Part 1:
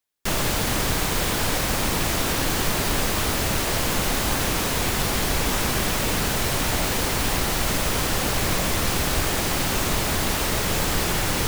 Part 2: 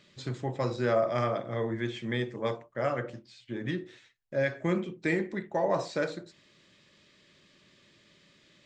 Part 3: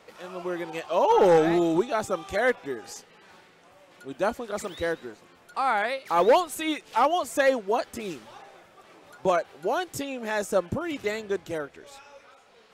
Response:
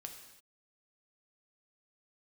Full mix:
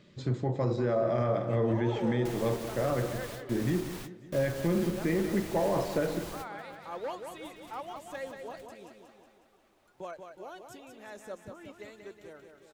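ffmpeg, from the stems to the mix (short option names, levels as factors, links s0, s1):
-filter_complex "[0:a]alimiter=limit=0.0631:level=0:latency=1:release=484,adelay=2000,volume=0.335[s0];[1:a]tiltshelf=f=970:g=6,volume=1.12,asplit=3[s1][s2][s3];[s2]volume=0.178[s4];[2:a]adelay=750,volume=0.119,asplit=2[s5][s6];[s6]volume=0.473[s7];[s3]apad=whole_len=598738[s8];[s0][s8]sidechaingate=range=0.0224:threshold=0.00178:ratio=16:detection=peak[s9];[s1][s5]amix=inputs=2:normalize=0,alimiter=limit=0.0944:level=0:latency=1:release=25,volume=1[s10];[s4][s7]amix=inputs=2:normalize=0,aecho=0:1:183|366|549|732|915|1098|1281|1464|1647:1|0.57|0.325|0.185|0.106|0.0602|0.0343|0.0195|0.0111[s11];[s9][s10][s11]amix=inputs=3:normalize=0"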